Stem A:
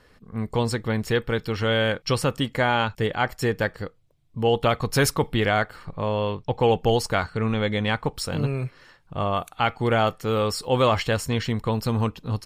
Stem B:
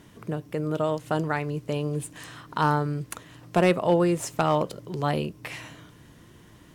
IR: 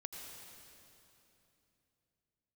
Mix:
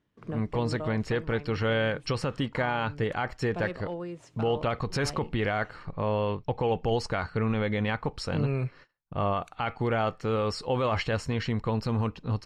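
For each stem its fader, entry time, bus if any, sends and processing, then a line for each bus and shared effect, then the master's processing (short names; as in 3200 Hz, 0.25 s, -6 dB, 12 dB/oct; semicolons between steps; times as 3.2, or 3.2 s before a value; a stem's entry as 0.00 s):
-1.5 dB, 0.00 s, no send, gate -46 dBFS, range -29 dB; bell 3400 Hz -6.5 dB 0.23 oct
-2.0 dB, 0.00 s, no send, gate -46 dBFS, range -22 dB; auto duck -13 dB, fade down 1.30 s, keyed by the first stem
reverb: off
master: LPF 4600 Hz 12 dB/oct; limiter -17.5 dBFS, peak gain reduction 8.5 dB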